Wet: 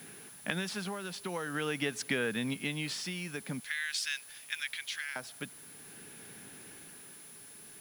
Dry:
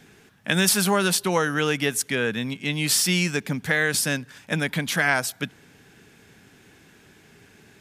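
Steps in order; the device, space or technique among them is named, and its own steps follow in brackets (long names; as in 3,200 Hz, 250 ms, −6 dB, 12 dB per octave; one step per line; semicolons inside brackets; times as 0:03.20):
0:03.60–0:05.16: Bessel high-pass filter 2,700 Hz, order 4
medium wave at night (band-pass filter 130–4,400 Hz; downward compressor, threshold −28 dBFS, peak gain reduction 12 dB; amplitude tremolo 0.47 Hz, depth 61%; steady tone 10,000 Hz −51 dBFS; white noise bed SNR 18 dB)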